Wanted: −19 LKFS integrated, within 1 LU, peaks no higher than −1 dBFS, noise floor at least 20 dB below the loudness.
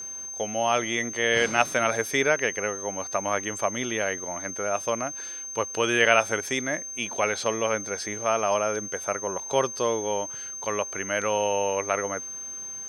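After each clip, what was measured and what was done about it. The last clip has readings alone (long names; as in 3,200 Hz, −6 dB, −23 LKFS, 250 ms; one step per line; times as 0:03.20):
interfering tone 6,300 Hz; level of the tone −34 dBFS; integrated loudness −26.0 LKFS; sample peak −3.5 dBFS; target loudness −19.0 LKFS
→ notch filter 6,300 Hz, Q 30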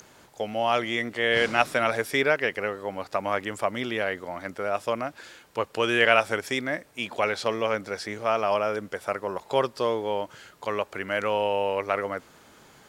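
interfering tone none found; integrated loudness −26.5 LKFS; sample peak −3.5 dBFS; target loudness −19.0 LKFS
→ level +7.5 dB
brickwall limiter −1 dBFS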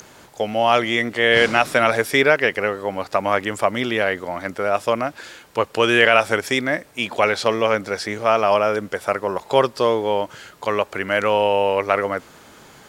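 integrated loudness −19.5 LKFS; sample peak −1.0 dBFS; background noise floor −48 dBFS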